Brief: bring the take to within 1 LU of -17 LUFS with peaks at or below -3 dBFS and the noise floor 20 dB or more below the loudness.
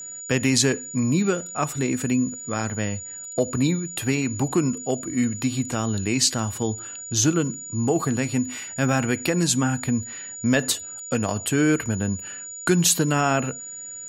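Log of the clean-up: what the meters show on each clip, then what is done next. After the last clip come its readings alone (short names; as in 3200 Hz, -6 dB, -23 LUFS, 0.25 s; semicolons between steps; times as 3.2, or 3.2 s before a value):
steady tone 6900 Hz; tone level -34 dBFS; loudness -23.5 LUFS; peak -5.5 dBFS; loudness target -17.0 LUFS
-> notch 6900 Hz, Q 30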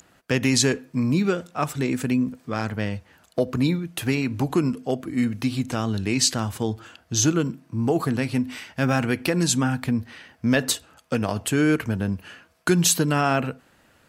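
steady tone none; loudness -24.0 LUFS; peak -6.5 dBFS; loudness target -17.0 LUFS
-> gain +7 dB; limiter -3 dBFS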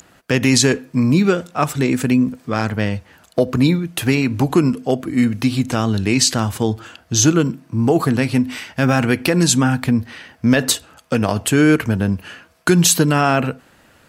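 loudness -17.5 LUFS; peak -3.0 dBFS; noise floor -52 dBFS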